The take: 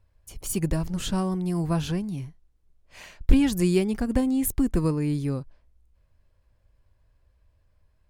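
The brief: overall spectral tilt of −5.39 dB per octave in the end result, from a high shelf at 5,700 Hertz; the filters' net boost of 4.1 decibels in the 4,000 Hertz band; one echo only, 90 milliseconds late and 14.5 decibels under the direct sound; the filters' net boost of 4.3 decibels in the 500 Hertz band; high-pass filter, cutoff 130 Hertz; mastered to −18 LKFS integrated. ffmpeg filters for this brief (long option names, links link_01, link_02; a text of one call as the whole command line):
ffmpeg -i in.wav -af "highpass=130,equalizer=frequency=500:width_type=o:gain=6,equalizer=frequency=4000:width_type=o:gain=3.5,highshelf=frequency=5700:gain=5,aecho=1:1:90:0.188,volume=6.5dB" out.wav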